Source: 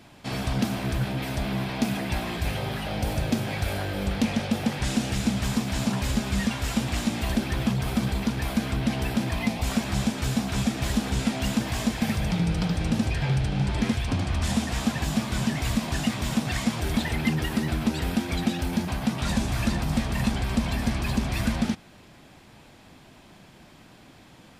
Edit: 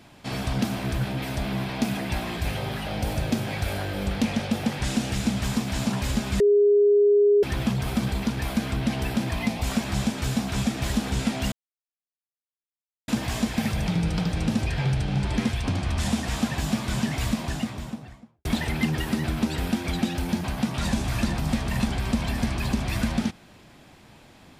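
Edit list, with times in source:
6.4–7.43 bleep 410 Hz -14.5 dBFS
11.52 insert silence 1.56 s
15.63–16.89 studio fade out

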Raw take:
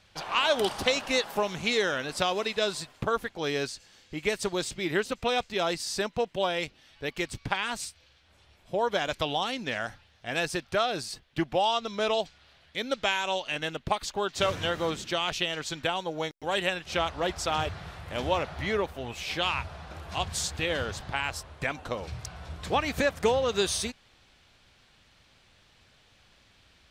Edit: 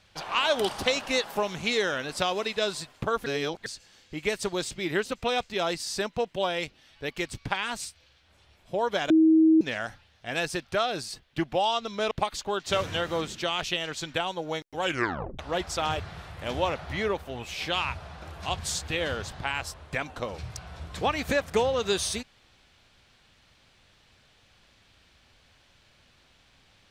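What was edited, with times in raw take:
3.26–3.66 reverse
9.1–9.61 bleep 319 Hz -15 dBFS
12.11–13.8 cut
16.51 tape stop 0.57 s

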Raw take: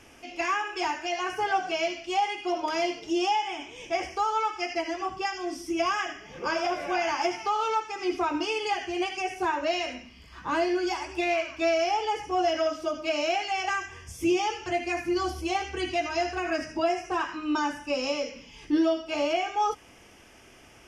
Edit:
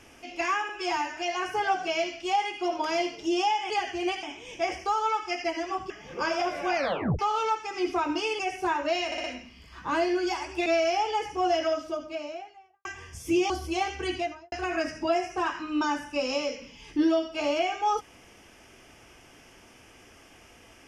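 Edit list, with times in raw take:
0.69–1.01 stretch 1.5×
5.21–6.15 cut
7 tape stop 0.44 s
8.64–9.17 move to 3.54
9.84 stutter 0.06 s, 4 plays
11.26–11.6 cut
12.45–13.79 studio fade out
14.44–15.24 cut
15.85–16.26 studio fade out

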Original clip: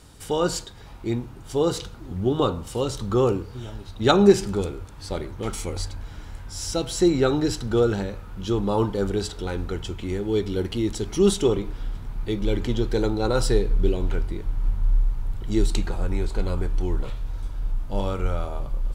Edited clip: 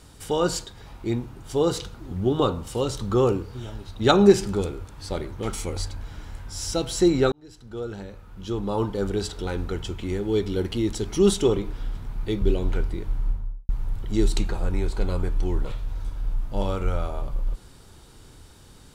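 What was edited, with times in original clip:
7.32–9.39 fade in
12.42–13.8 cut
14.52–15.07 studio fade out

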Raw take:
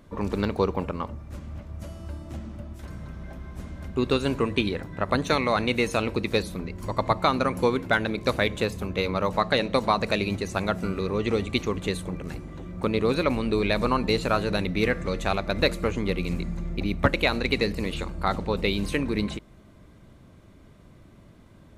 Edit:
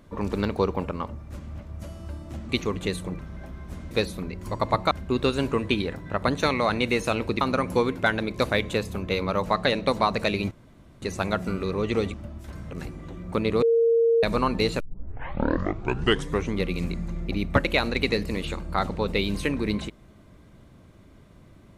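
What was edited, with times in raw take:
2.49–3.06 swap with 11.5–12.2
6.28–7.28 move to 3.78
10.38 insert room tone 0.51 s
13.11–13.72 bleep 461 Hz -16.5 dBFS
14.29 tape start 1.74 s

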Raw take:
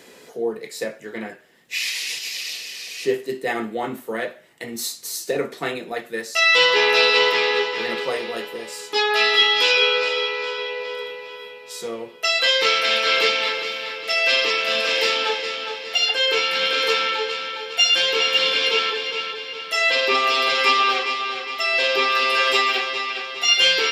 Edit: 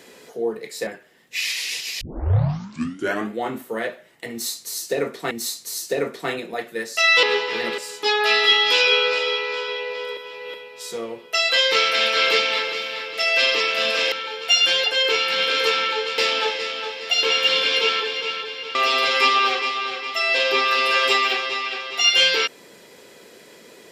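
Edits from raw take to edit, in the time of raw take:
0.87–1.25 cut
2.39 tape start 1.32 s
4.69–5.69 loop, 2 plays
6.61–7.48 cut
8.03–8.68 cut
11.07–11.44 reverse
15.02–16.07 swap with 17.41–18.13
19.65–20.19 cut

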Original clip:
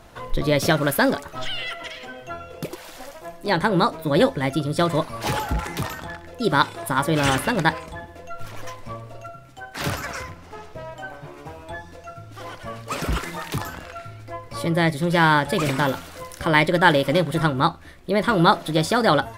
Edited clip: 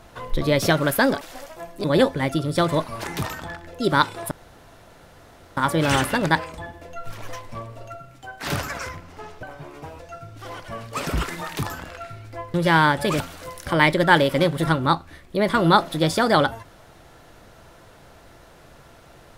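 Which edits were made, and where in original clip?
1.21–2.86 cut
3.49–4.05 cut
5.25–5.64 cut
6.91 insert room tone 1.26 s
10.77–11.06 cut
11.62–11.94 cut
14.49–15.02 cut
15.68–15.94 cut

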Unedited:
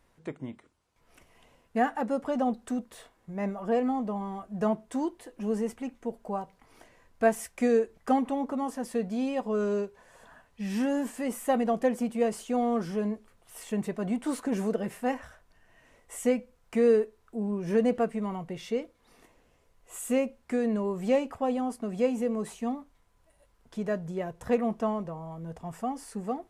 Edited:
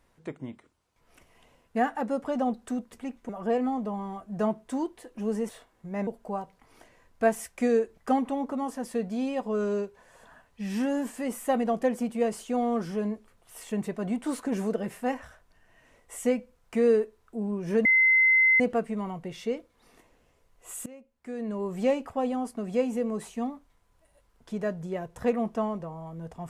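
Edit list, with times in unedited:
2.93–3.51 swap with 5.71–6.07
17.85 add tone 2060 Hz -17 dBFS 0.75 s
20.11–20.95 fade in quadratic, from -22 dB

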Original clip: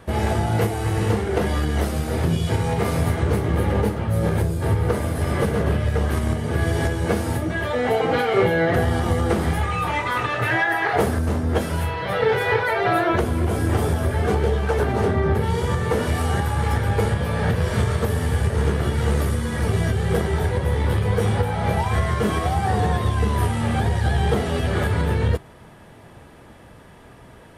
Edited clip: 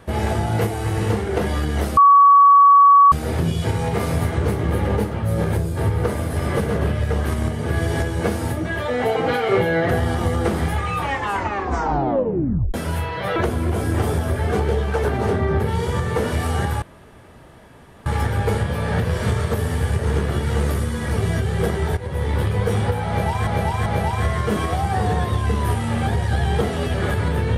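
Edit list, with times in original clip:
1.97 add tone 1130 Hz -7 dBFS 1.15 s
9.85 tape stop 1.74 s
12.21–13.11 cut
16.57 insert room tone 1.24 s
20.48–20.9 fade in equal-power, from -12.5 dB
21.59–21.98 loop, 3 plays

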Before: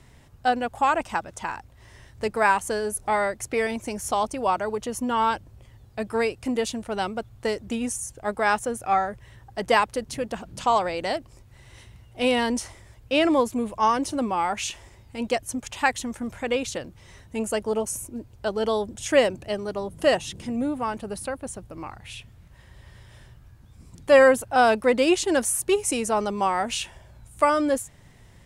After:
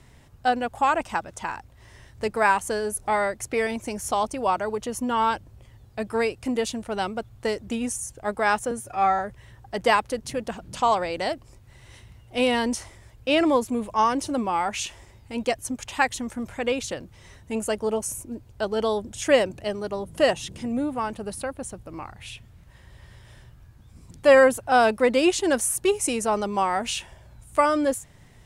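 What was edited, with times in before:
8.71–9.03 stretch 1.5×

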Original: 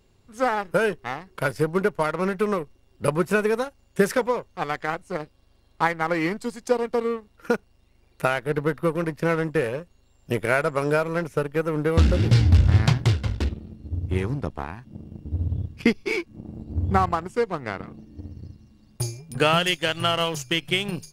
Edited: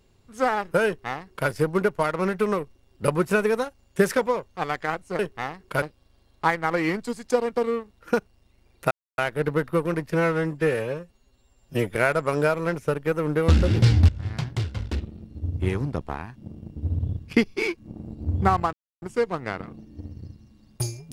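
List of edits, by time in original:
0.86–1.49 copy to 5.19
8.28 insert silence 0.27 s
9.22–10.44 stretch 1.5×
12.58–13.85 fade in, from -19.5 dB
17.22 insert silence 0.29 s

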